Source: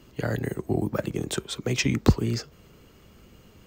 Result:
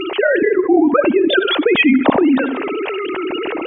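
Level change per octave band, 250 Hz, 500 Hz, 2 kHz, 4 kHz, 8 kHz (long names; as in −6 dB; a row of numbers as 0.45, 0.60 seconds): +14.5 dB, +17.0 dB, +17.5 dB, +12.5 dB, below −40 dB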